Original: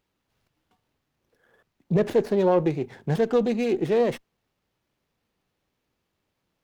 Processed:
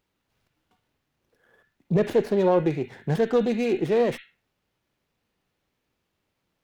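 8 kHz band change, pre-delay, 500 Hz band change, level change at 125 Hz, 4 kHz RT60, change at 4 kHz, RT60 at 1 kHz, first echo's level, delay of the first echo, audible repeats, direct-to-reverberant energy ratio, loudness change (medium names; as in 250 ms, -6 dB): no reading, 36 ms, 0.0 dB, 0.0 dB, 0.25 s, +1.0 dB, 0.40 s, no echo, no echo, no echo, 10.5 dB, 0.0 dB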